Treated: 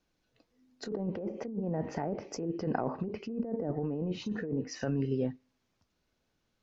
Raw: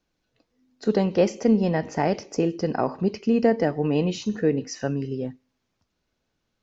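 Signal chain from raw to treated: treble ducked by the level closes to 660 Hz, closed at -17.5 dBFS; negative-ratio compressor -27 dBFS, ratio -1; gain -6 dB

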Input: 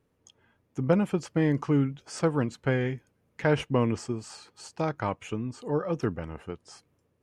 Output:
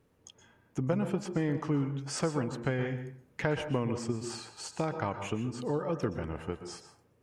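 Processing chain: compressor 2.5:1, threshold -35 dBFS, peak gain reduction 12 dB; plate-style reverb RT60 0.53 s, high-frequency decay 0.5×, pre-delay 0.11 s, DRR 8.5 dB; gain +3.5 dB

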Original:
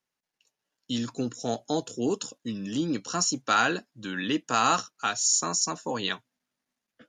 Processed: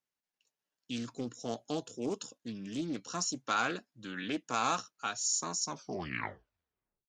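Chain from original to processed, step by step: tape stop at the end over 1.47 s; Doppler distortion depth 0.22 ms; gain -8 dB

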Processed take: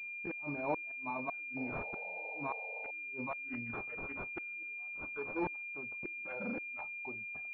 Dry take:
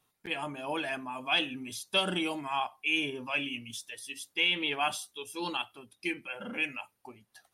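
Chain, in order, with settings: flipped gate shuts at -24 dBFS, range -37 dB; painted sound noise, 1.56–2.91, 420–920 Hz -50 dBFS; pulse-width modulation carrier 2400 Hz; gain +1.5 dB

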